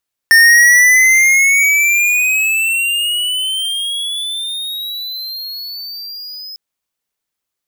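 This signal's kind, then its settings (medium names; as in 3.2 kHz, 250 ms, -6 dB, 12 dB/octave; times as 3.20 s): gliding synth tone square, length 6.25 s, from 1.81 kHz, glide +18 st, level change -23 dB, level -6 dB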